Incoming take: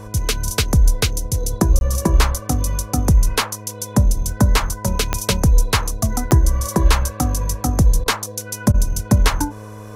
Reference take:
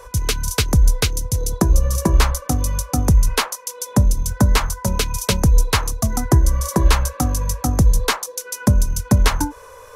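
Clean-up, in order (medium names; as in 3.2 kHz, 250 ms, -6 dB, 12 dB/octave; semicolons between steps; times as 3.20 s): de-click; de-hum 105.6 Hz, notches 7; interpolate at 1.79 s, 21 ms; interpolate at 8.04/8.72 s, 19 ms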